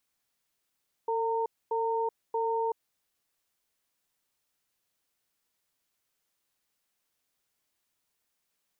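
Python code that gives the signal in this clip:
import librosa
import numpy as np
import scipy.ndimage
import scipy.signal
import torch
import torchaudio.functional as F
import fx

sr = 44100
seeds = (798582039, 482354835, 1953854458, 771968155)

y = fx.cadence(sr, length_s=1.89, low_hz=451.0, high_hz=916.0, on_s=0.38, off_s=0.25, level_db=-29.0)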